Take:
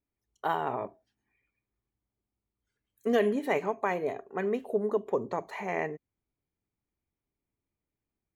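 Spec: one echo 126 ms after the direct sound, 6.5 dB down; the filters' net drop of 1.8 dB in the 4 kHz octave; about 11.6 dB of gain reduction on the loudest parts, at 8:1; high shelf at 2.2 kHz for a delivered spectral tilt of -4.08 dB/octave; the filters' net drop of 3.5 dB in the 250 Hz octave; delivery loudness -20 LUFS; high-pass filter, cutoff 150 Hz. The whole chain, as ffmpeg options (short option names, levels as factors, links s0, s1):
-af "highpass=150,equalizer=f=250:t=o:g=-3.5,highshelf=f=2200:g=4,equalizer=f=4000:t=o:g=-7,acompressor=threshold=0.0178:ratio=8,aecho=1:1:126:0.473,volume=10"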